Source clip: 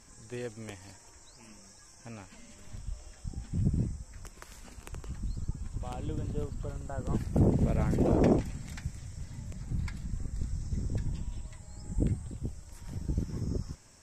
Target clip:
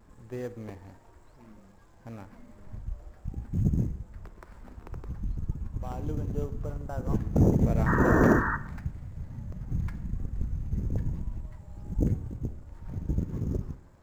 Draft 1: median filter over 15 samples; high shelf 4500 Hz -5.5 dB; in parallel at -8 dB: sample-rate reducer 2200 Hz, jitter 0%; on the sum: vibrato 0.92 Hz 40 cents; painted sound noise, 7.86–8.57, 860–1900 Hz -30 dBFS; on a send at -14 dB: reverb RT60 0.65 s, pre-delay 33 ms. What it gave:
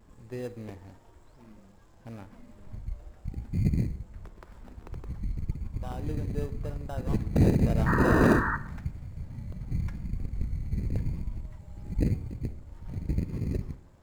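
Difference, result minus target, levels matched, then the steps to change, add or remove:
sample-rate reducer: distortion +9 dB
change: sample-rate reducer 6500 Hz, jitter 0%

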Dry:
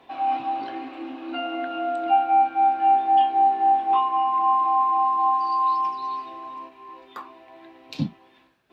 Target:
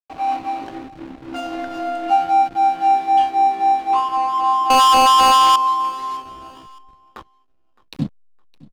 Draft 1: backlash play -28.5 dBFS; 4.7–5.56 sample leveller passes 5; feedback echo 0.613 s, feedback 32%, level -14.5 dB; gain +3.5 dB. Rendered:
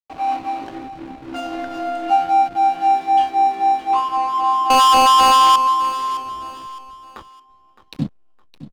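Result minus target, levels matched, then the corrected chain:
echo-to-direct +8 dB
backlash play -28.5 dBFS; 4.7–5.56 sample leveller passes 5; feedback echo 0.613 s, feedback 32%, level -22.5 dB; gain +3.5 dB

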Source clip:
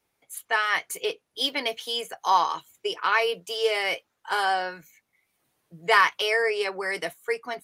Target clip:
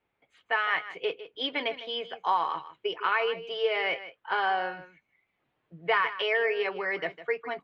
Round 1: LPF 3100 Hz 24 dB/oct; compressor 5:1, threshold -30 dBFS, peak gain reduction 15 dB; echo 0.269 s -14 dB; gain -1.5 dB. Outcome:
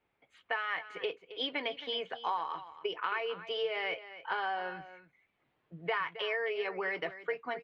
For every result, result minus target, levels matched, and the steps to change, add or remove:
echo 0.114 s late; compressor: peak gain reduction +8.5 dB
change: echo 0.155 s -14 dB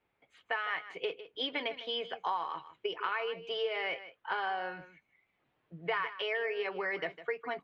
compressor: peak gain reduction +8.5 dB
change: compressor 5:1, threshold -19.5 dBFS, peak gain reduction 6.5 dB

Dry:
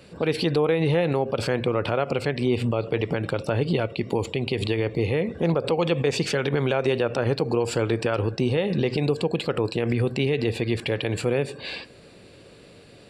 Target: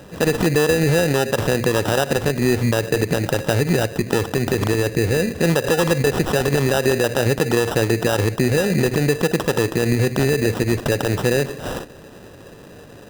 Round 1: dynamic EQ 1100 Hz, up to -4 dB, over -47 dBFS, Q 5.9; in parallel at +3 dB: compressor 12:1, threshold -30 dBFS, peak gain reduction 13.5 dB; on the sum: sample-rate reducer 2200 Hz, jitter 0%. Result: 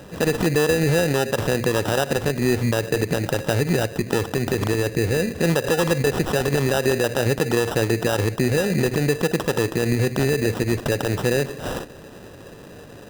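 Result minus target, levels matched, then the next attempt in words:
compressor: peak gain reduction +6.5 dB
dynamic EQ 1100 Hz, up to -4 dB, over -47 dBFS, Q 5.9; in parallel at +3 dB: compressor 12:1, threshold -23 dBFS, peak gain reduction 7 dB; on the sum: sample-rate reducer 2200 Hz, jitter 0%

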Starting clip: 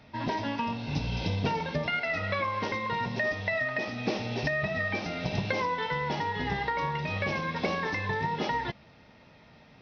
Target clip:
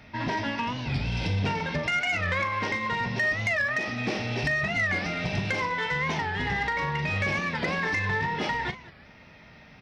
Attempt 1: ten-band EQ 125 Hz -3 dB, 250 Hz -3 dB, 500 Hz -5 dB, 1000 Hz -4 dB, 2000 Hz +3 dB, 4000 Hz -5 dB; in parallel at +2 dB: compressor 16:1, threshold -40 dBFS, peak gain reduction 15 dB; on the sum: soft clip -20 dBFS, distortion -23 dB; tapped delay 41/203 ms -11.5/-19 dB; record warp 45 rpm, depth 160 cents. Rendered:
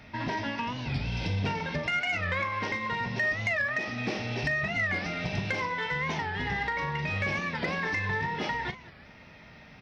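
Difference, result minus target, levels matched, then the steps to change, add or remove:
compressor: peak gain reduction +10 dB
change: compressor 16:1, threshold -29.5 dBFS, peak gain reduction 5 dB

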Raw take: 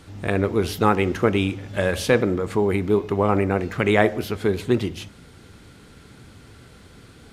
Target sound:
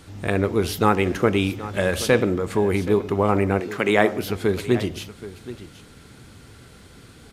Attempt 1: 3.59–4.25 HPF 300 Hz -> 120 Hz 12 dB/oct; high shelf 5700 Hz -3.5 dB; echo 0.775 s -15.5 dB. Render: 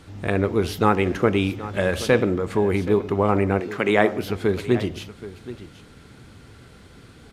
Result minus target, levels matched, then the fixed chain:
8000 Hz band -5.0 dB
3.59–4.25 HPF 300 Hz -> 120 Hz 12 dB/oct; high shelf 5700 Hz +4.5 dB; echo 0.775 s -15.5 dB

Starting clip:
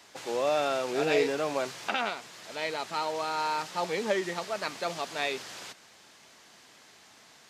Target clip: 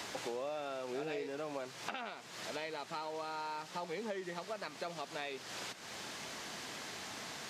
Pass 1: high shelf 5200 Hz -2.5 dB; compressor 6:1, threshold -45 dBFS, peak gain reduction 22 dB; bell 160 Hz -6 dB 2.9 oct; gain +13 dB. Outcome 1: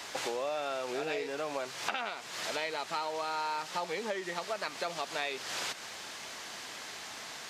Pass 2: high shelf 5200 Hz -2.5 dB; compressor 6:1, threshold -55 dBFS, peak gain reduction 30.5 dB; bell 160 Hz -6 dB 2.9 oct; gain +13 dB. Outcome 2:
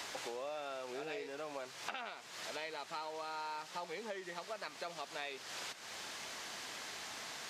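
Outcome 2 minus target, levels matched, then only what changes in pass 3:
125 Hz band -6.5 dB
change: bell 160 Hz +2.5 dB 2.9 oct

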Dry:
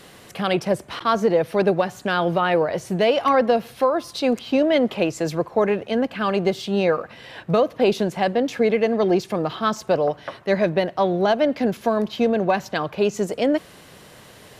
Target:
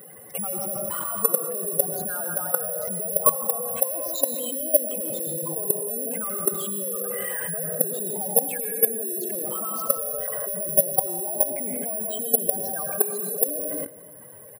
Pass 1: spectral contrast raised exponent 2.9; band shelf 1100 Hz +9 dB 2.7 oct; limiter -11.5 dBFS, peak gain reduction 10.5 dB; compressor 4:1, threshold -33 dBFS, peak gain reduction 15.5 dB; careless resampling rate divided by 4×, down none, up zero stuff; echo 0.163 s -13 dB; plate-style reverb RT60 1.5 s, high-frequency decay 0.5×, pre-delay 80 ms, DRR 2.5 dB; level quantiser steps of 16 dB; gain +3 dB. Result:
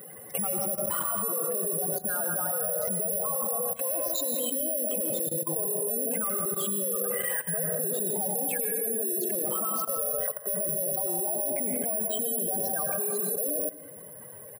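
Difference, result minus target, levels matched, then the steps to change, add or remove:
compressor: peak gain reduction +7 dB
change: compressor 4:1, threshold -24 dBFS, peak gain reduction 8.5 dB

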